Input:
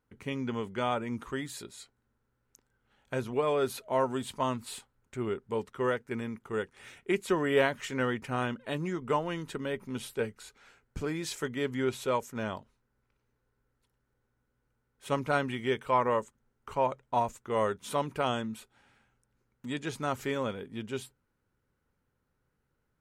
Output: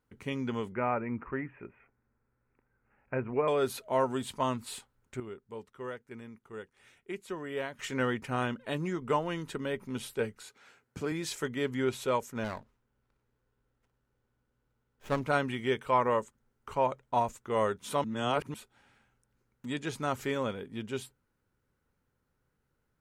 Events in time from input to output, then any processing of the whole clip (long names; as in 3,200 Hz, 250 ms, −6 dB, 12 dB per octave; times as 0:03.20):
0:00.72–0:03.48: Butterworth low-pass 2,600 Hz 96 dB per octave
0:05.20–0:07.79: clip gain −10.5 dB
0:10.42–0:11.12: high-pass filter 120 Hz
0:12.44–0:15.26: windowed peak hold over 9 samples
0:18.04–0:18.54: reverse